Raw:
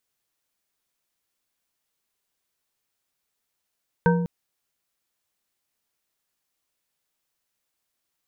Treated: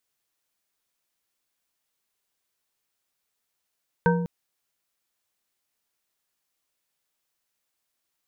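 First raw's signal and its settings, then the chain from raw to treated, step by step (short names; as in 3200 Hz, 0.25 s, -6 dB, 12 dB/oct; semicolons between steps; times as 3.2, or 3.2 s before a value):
glass hit bar, length 0.20 s, lowest mode 173 Hz, modes 4, decay 1.30 s, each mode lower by 2 dB, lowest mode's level -16 dB
low shelf 330 Hz -3 dB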